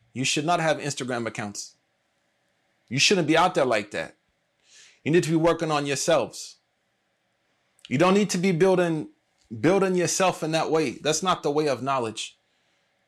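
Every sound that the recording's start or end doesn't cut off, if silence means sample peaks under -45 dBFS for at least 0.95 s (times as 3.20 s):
2.88–6.52 s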